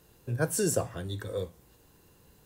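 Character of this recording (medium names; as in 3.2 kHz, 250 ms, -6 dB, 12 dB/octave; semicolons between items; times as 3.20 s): noise floor -61 dBFS; spectral tilt -4.5 dB/octave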